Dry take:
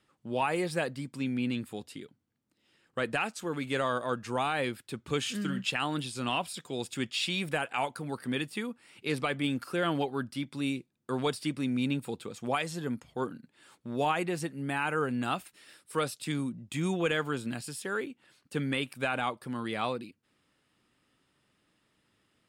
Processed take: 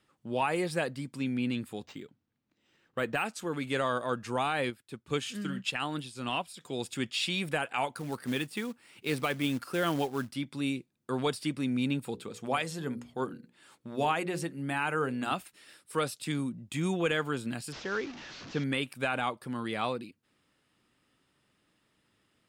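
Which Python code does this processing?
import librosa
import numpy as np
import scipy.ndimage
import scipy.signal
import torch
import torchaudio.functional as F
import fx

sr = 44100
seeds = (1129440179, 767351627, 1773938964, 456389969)

y = fx.resample_linear(x, sr, factor=4, at=(1.85, 3.25))
y = fx.upward_expand(y, sr, threshold_db=-50.0, expansion=1.5, at=(4.7, 6.61))
y = fx.quant_float(y, sr, bits=2, at=(7.96, 10.34))
y = fx.hum_notches(y, sr, base_hz=60, count=9, at=(12.13, 15.33))
y = fx.delta_mod(y, sr, bps=32000, step_db=-39.5, at=(17.72, 18.64))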